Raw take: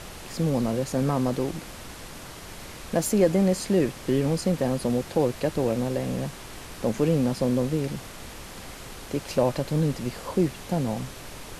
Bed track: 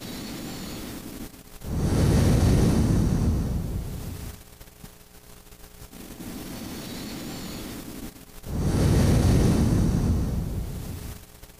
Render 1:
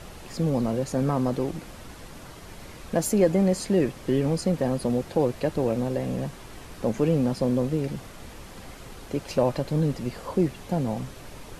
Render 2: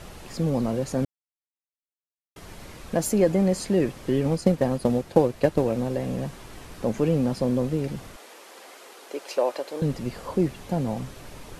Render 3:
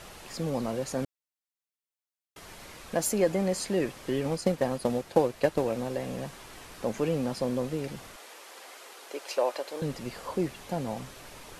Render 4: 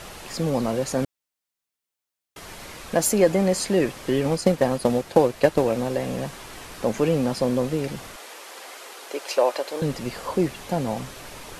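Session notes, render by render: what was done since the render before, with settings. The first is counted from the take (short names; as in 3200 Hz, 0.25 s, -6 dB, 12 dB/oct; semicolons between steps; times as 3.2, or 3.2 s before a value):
denoiser 6 dB, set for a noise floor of -42 dBFS
1.05–2.36 mute; 4.23–5.63 transient shaper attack +7 dB, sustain -4 dB; 8.16–9.82 HPF 370 Hz 24 dB/oct
low shelf 400 Hz -10 dB
gain +7 dB; limiter -3 dBFS, peak gain reduction 1.5 dB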